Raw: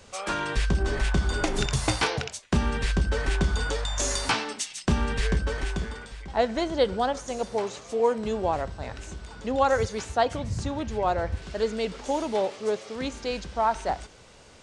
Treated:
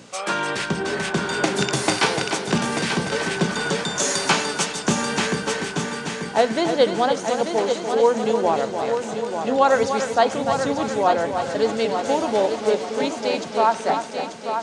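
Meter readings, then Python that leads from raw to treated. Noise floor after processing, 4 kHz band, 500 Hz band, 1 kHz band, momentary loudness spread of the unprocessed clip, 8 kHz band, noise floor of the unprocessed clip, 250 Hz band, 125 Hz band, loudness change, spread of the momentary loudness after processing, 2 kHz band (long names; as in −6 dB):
−32 dBFS, +7.0 dB, +7.0 dB, +7.0 dB, 7 LU, +7.0 dB, −51 dBFS, +6.5 dB, −1.5 dB, +6.0 dB, 6 LU, +7.0 dB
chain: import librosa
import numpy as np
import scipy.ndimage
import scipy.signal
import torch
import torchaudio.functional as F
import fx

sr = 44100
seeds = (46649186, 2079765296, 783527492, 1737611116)

p1 = fx.add_hum(x, sr, base_hz=60, snr_db=14)
p2 = scipy.signal.sosfilt(scipy.signal.butter(4, 150.0, 'highpass', fs=sr, output='sos'), p1)
p3 = fx.hum_notches(p2, sr, base_hz=60, count=5)
p4 = p3 + fx.echo_heads(p3, sr, ms=296, heads='first and third', feedback_pct=56, wet_db=-8.0, dry=0)
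y = p4 * librosa.db_to_amplitude(5.5)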